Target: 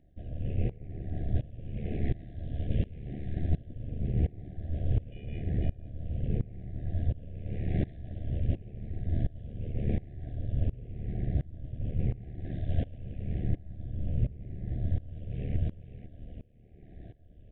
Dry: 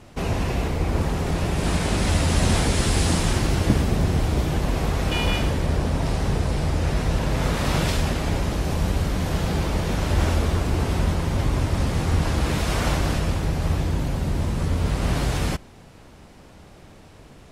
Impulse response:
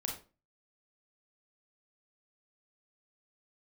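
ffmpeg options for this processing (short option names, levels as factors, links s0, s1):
-af "afftfilt=real='re*pow(10,8/40*sin(2*PI*(0.79*log(max(b,1)*sr/1024/100)/log(2)-(-0.88)*(pts-256)/sr)))':imag='im*pow(10,8/40*sin(2*PI*(0.79*log(max(b,1)*sr/1024/100)/log(2)-(-0.88)*(pts-256)/sr)))':win_size=1024:overlap=0.75,lowshelf=f=76:g=11.5,aeval=exprs='val(0)*sin(2*PI*37*n/s)':c=same,asuperstop=centerf=1100:order=20:qfactor=1.3,aresample=8000,aresample=44100,aecho=1:1:500:0.251,areverse,acompressor=threshold=0.0708:ratio=12,areverse,tiltshelf=f=970:g=7,acompressor=mode=upward:threshold=0.00891:ratio=2.5,aeval=exprs='val(0)*pow(10,-22*if(lt(mod(-1.4*n/s,1),2*abs(-1.4)/1000),1-mod(-1.4*n/s,1)/(2*abs(-1.4)/1000),(mod(-1.4*n/s,1)-2*abs(-1.4)/1000)/(1-2*abs(-1.4)/1000))/20)':c=same,volume=0.668"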